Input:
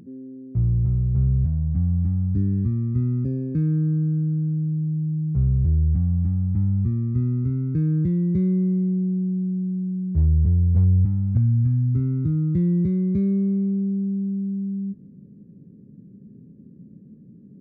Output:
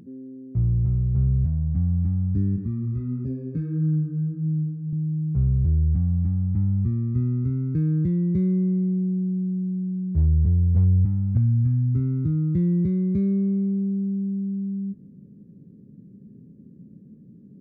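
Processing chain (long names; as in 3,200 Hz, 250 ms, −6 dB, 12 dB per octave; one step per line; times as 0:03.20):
0:02.56–0:04.93: multi-voice chorus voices 2, 1.5 Hz, delay 15 ms, depth 3 ms
level −1 dB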